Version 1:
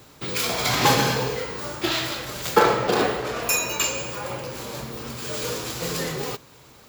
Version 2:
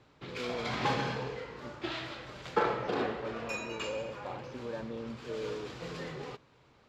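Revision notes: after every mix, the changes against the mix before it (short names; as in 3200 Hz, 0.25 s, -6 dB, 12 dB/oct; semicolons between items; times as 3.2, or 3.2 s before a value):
background -11.5 dB; master: add LPF 3300 Hz 12 dB/oct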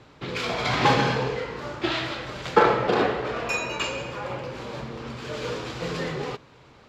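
background +11.0 dB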